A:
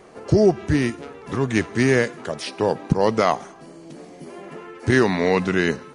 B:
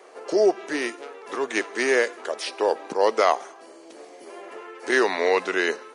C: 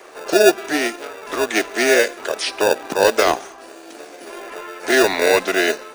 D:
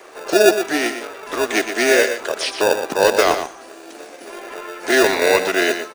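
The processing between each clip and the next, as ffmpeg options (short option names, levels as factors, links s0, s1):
-af "highpass=f=380:w=0.5412,highpass=f=380:w=1.3066"
-filter_complex "[0:a]acrossover=split=550|850|1900[s0][s1][s2][s3];[s0]acrusher=samples=42:mix=1:aa=0.000001[s4];[s2]acompressor=threshold=0.0112:ratio=6[s5];[s4][s1][s5][s3]amix=inputs=4:normalize=0,volume=2.51"
-af "aecho=1:1:120:0.355"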